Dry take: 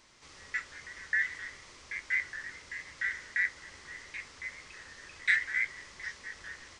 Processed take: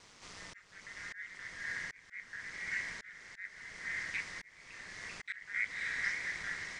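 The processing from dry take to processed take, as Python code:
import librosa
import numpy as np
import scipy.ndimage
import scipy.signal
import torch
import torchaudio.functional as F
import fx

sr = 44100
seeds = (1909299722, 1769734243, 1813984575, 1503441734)

y = x * np.sin(2.0 * np.pi * 100.0 * np.arange(len(x)) / sr)
y = fx.echo_diffused(y, sr, ms=560, feedback_pct=43, wet_db=-10.5)
y = fx.auto_swell(y, sr, attack_ms=669.0)
y = F.gain(torch.from_numpy(y), 5.5).numpy()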